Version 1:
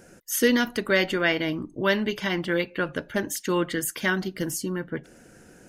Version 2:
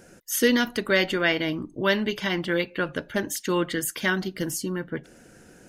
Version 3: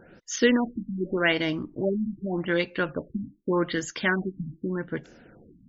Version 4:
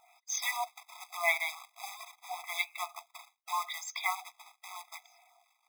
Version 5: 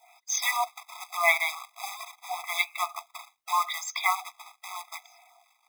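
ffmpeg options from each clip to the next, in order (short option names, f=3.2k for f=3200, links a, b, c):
-af "equalizer=f=3.7k:t=o:w=0.77:g=2.5"
-af "afftfilt=real='re*lt(b*sr/1024,280*pow(7600/280,0.5+0.5*sin(2*PI*0.84*pts/sr)))':imag='im*lt(b*sr/1024,280*pow(7600/280,0.5+0.5*sin(2*PI*0.84*pts/sr)))':win_size=1024:overlap=0.75"
-af "acrusher=bits=3:mode=log:mix=0:aa=0.000001,afftfilt=real='re*eq(mod(floor(b*sr/1024/660),2),1)':imag='im*eq(mod(floor(b*sr/1024/660),2),1)':win_size=1024:overlap=0.75"
-af "adynamicequalizer=threshold=0.00251:dfrequency=1200:dqfactor=5.3:tfrequency=1200:tqfactor=5.3:attack=5:release=100:ratio=0.375:range=3:mode=boostabove:tftype=bell,volume=6dB"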